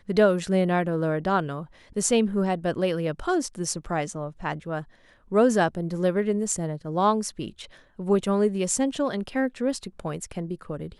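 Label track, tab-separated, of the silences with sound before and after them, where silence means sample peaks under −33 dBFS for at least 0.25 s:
1.640000	1.960000	silence
4.820000	5.320000	silence
7.650000	7.990000	silence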